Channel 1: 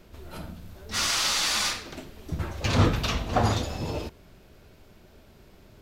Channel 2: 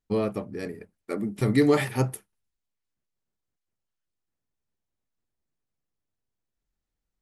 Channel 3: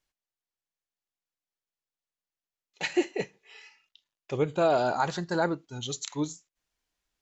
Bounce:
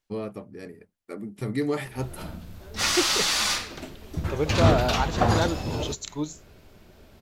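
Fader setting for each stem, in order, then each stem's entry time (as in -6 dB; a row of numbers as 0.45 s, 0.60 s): +1.5 dB, -6.5 dB, 0.0 dB; 1.85 s, 0.00 s, 0.00 s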